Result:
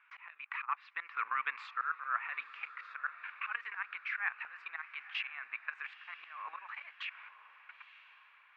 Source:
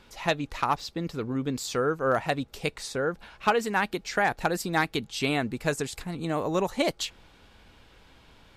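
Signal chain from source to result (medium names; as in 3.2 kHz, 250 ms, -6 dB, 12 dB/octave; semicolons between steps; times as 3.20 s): gate -52 dBFS, range -20 dB; Chebyshev band-pass 1.1–2.5 kHz, order 3; peak limiter -22.5 dBFS, peak gain reduction 8.5 dB; level held to a coarse grid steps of 17 dB; slow attack 573 ms; echo that smears into a reverb 945 ms, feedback 46%, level -15 dB; trim +18 dB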